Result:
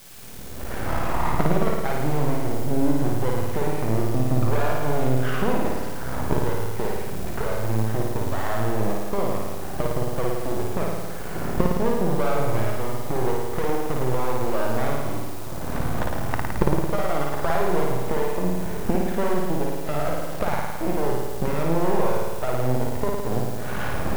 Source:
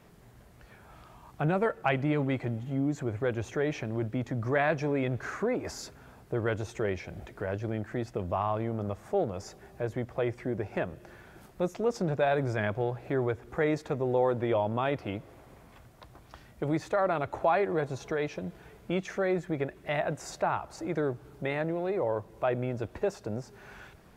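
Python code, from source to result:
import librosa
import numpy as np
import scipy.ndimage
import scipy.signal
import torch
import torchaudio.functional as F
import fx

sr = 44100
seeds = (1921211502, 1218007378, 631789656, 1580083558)

p1 = fx.recorder_agc(x, sr, target_db=-17.0, rise_db_per_s=32.0, max_gain_db=30)
p2 = scipy.signal.sosfilt(scipy.signal.butter(2, 1300.0, 'lowpass', fs=sr, output='sos'), p1)
p3 = fx.quant_dither(p2, sr, seeds[0], bits=6, dither='triangular')
p4 = p2 + F.gain(torch.from_numpy(p3), -8.0).numpy()
p5 = np.maximum(p4, 0.0)
y = p5 + fx.room_flutter(p5, sr, wall_m=9.4, rt60_s=1.4, dry=0)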